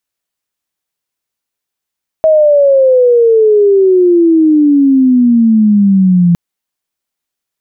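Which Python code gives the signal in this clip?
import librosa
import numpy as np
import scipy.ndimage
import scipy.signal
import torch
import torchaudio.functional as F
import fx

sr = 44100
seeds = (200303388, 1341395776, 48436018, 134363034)

y = fx.chirp(sr, length_s=4.11, from_hz=640.0, to_hz=170.0, law='logarithmic', from_db=-4.0, to_db=-4.5)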